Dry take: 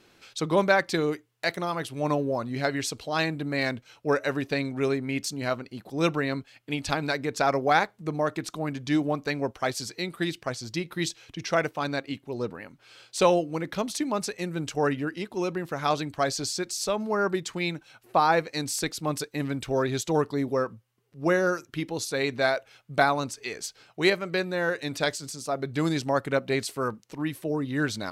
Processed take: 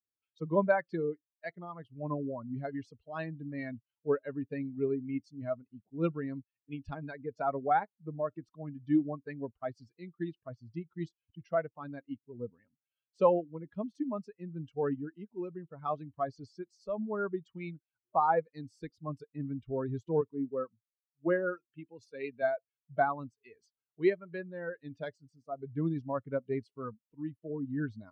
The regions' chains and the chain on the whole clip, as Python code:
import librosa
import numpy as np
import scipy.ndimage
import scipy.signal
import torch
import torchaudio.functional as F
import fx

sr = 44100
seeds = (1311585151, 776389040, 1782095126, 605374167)

y = fx.chain(x, sr, fx.highpass(hz=150.0, slope=6),
    fx.peak_eq(hz=2600.0, db=6.5, octaves=0.25),
    fx.band_widen(depth_pct=40), at=(20.21, 22.42))
y = fx.bin_expand(y, sr, power=2.0)
y = scipy.signal.sosfilt(scipy.signal.butter(2, 1100.0, 'lowpass', fs=sr, output='sos'), y)
y = fx.low_shelf(y, sr, hz=82.0, db=-7.0)